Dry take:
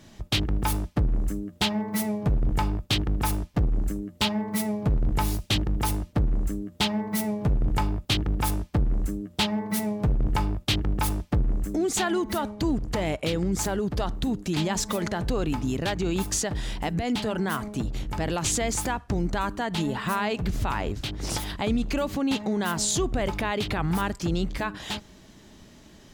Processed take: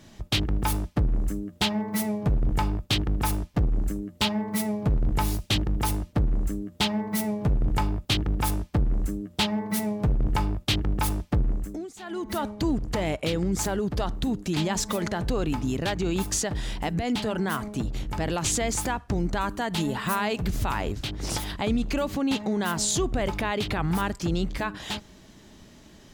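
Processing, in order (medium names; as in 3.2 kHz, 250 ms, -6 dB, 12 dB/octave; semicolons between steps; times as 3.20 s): 11.47–12.44 s: dip -21 dB, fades 0.46 s linear; 19.49–20.95 s: treble shelf 8.1 kHz +8 dB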